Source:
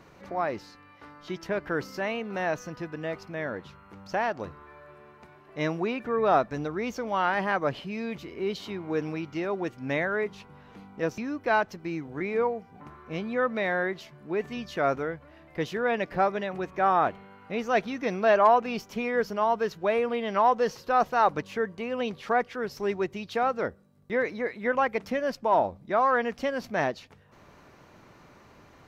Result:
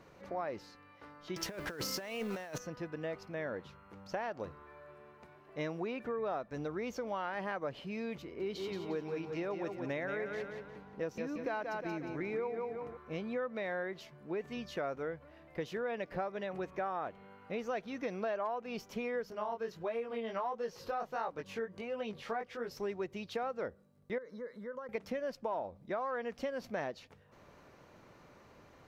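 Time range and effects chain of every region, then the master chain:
1.36–2.58 s: companding laws mixed up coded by mu + treble shelf 3.2 kHz +12 dB + compressor with a negative ratio -32 dBFS, ratio -0.5
8.22–12.97 s: feedback delay 178 ms, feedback 43%, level -6 dB + tape noise reduction on one side only decoder only
19.30–22.71 s: upward compressor, threshold -32 dBFS + chorus 1.5 Hz, delay 17 ms, depth 5.4 ms
24.18–24.89 s: compression 4:1, threshold -37 dBFS + static phaser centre 500 Hz, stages 8
whole clip: peaking EQ 520 Hz +4.5 dB 0.49 oct; compression 6:1, threshold -28 dBFS; trim -6 dB

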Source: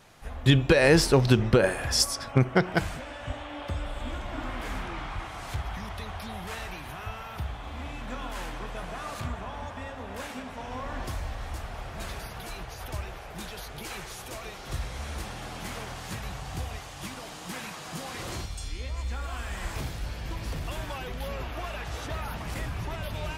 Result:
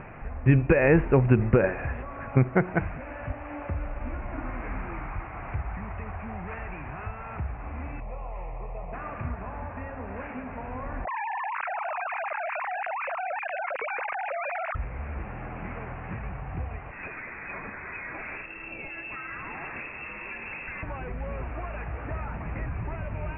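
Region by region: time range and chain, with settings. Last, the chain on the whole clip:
8.00–8.93 s: low-pass 2.8 kHz 24 dB/octave + static phaser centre 640 Hz, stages 4
11.05–14.75 s: formants replaced by sine waves + level flattener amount 100%
16.91–20.83 s: bass shelf 160 Hz -10 dB + frequency inversion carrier 2.7 kHz
whole clip: steep low-pass 2.6 kHz 96 dB/octave; bass shelf 400 Hz +3.5 dB; upward compressor, threshold -29 dBFS; trim -2 dB

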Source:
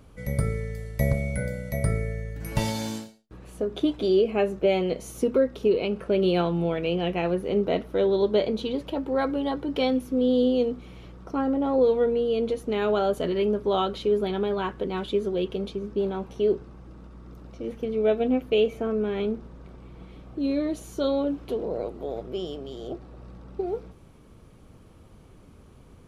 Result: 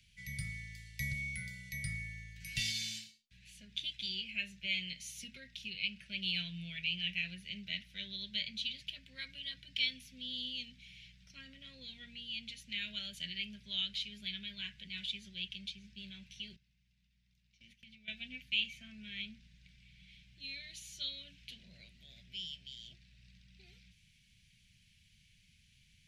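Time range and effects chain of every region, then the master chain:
16.56–18.08 s: gate -36 dBFS, range -13 dB + compression 5:1, threshold -33 dBFS
whole clip: inverse Chebyshev band-stop 290–1300 Hz, stop band 40 dB; three-band isolator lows -20 dB, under 330 Hz, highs -13 dB, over 6.6 kHz; trim +2 dB

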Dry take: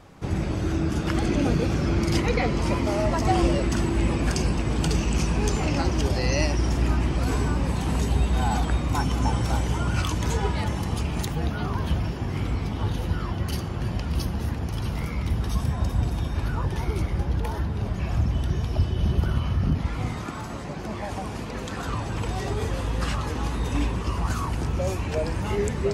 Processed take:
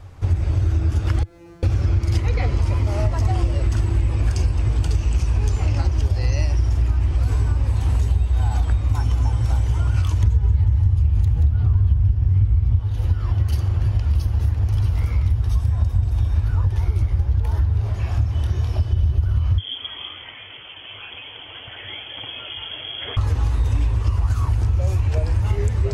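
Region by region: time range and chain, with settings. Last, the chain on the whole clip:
1.23–1.63 s: median filter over 15 samples + bass shelf 240 Hz -8.5 dB + feedback comb 170 Hz, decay 0.89 s, mix 100%
10.23–12.80 s: tone controls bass +13 dB, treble -4 dB + delay 179 ms -7 dB
17.80–18.93 s: bass shelf 140 Hz -11 dB + doubling 27 ms -6 dB
19.58–23.17 s: frequency inversion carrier 3.3 kHz + high-pass 260 Hz + tilt EQ -4.5 dB/octave
whole clip: resonant low shelf 130 Hz +10 dB, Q 3; compression, threshold -15 dBFS

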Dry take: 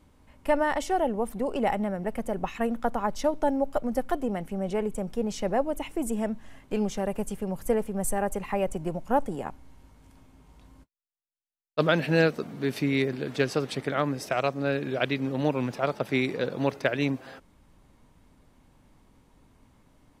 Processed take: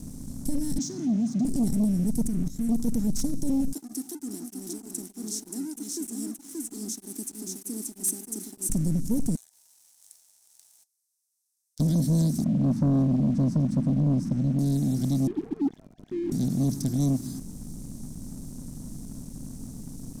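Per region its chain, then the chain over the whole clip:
0.78–1.45 s: Chebyshev band-pass 130–6500 Hz, order 5 + high-order bell 1 kHz -8 dB 1 oct
2.21–2.69 s: bass shelf 460 Hz +4.5 dB + level held to a coarse grid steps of 18 dB
3.73–8.70 s: Chebyshev high-pass 300 Hz, order 5 + delay 578 ms -5.5 dB + tremolo of two beating tones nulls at 3.2 Hz
9.35–11.80 s: ring modulator 930 Hz + compression, threshold -42 dBFS + brick-wall FIR high-pass 500 Hz
12.44–14.59 s: low-pass 1.3 kHz + peaking EQ 220 Hz +13 dB 1.2 oct + static phaser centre 1 kHz, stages 4
15.27–16.32 s: formants replaced by sine waves + level flattener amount 70%
whole clip: spectral levelling over time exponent 0.6; elliptic band-stop 240–5700 Hz, stop band 40 dB; waveshaping leveller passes 2

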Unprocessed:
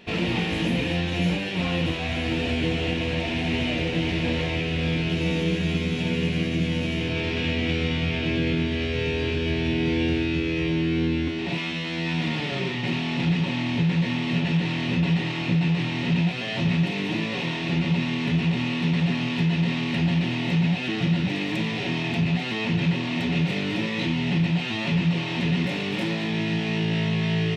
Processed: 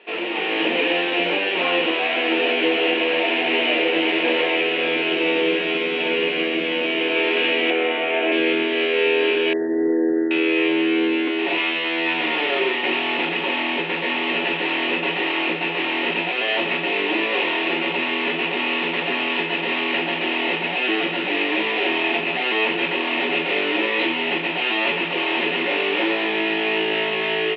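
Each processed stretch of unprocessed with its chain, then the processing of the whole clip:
7.70–8.32 s: band-pass 230–2600 Hz + peaking EQ 690 Hz +8 dB 0.4 oct
9.53–10.31 s: resonances exaggerated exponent 1.5 + brick-wall FIR low-pass 2 kHz
whole clip: elliptic band-pass 360–3000 Hz, stop band 60 dB; level rider gain up to 7.5 dB; trim +2.5 dB

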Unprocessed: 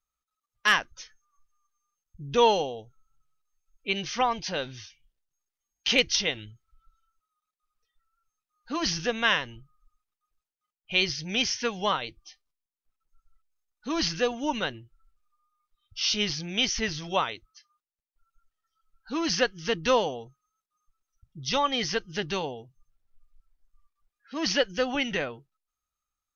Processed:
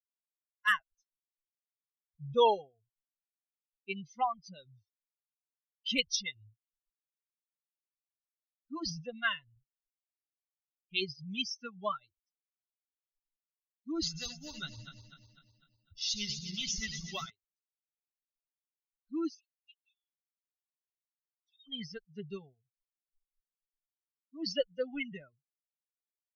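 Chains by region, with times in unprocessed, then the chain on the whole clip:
14.02–17.30 s: backward echo that repeats 125 ms, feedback 77%, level -6 dB + spectrum-flattening compressor 2:1
19.29–21.67 s: square tremolo 2.6 Hz, depth 65%, duty 30% + rippled Chebyshev high-pass 2.5 kHz, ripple 6 dB
whole clip: expander on every frequency bin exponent 3; band-stop 2.4 kHz, Q 11; trim -1.5 dB

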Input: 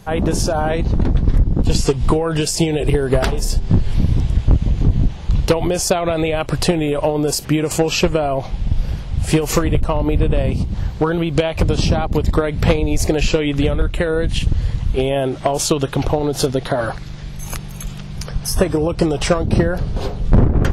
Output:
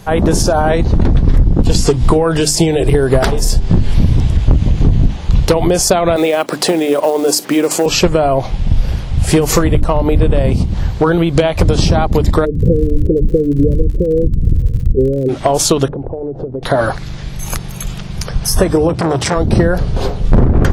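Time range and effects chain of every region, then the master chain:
6.16–7.86 s: high-pass 220 Hz 24 dB/octave + companded quantiser 6-bit
12.44–15.28 s: steep low-pass 510 Hz 72 dB/octave + crackle 64 per s -33 dBFS
15.88–16.63 s: resonant low-pass 480 Hz, resonance Q 1.6 + compression 5:1, threshold -26 dBFS
18.89–19.36 s: high-pass 93 Hz 24 dB/octave + bass shelf 140 Hz +10 dB + transformer saturation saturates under 1.2 kHz
whole clip: hum notches 50/100/150/200/250/300 Hz; dynamic bell 2.7 kHz, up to -5 dB, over -42 dBFS, Q 3; loudness maximiser +7.5 dB; trim -1 dB

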